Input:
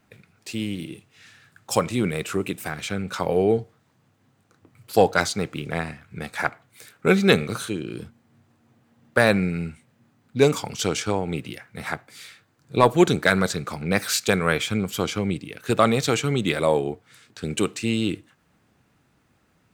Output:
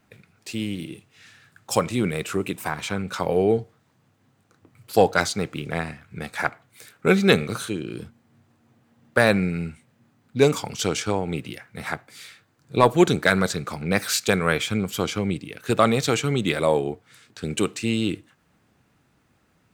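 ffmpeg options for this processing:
-filter_complex "[0:a]asettb=1/sr,asplit=3[s0][s1][s2];[s0]atrim=end=2.564[s3];[s1]atrim=start=2.56:end=3.02,asetpts=PTS-STARTPTS,afade=t=in:d=0.004:c=qsin,afade=t=out:st=0.456:d=0.004:c=qsin,equalizer=f=970:w=2.8:g=12.5[s4];[s2]atrim=start=3.016[s5];[s3][s4]acrossfade=d=0.004:c1=hsin:c2=qsin[s6];[s6][s5]acrossfade=d=0.004:c1=qsin:c2=hsin"

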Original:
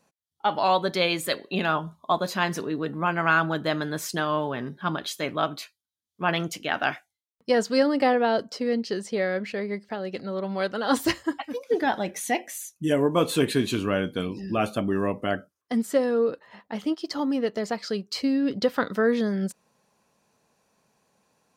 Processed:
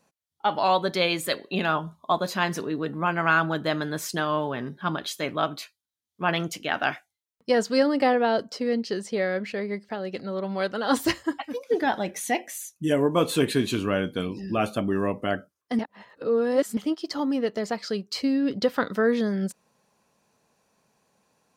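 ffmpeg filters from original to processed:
-filter_complex "[0:a]asplit=3[s0][s1][s2];[s0]atrim=end=15.792[s3];[s1]atrim=start=15.788:end=16.772,asetpts=PTS-STARTPTS,areverse[s4];[s2]atrim=start=16.768[s5];[s3][s4]acrossfade=d=0.004:c1=hsin:c2=hsin[s6];[s6][s5]acrossfade=d=0.004:c1=hsin:c2=hsin"

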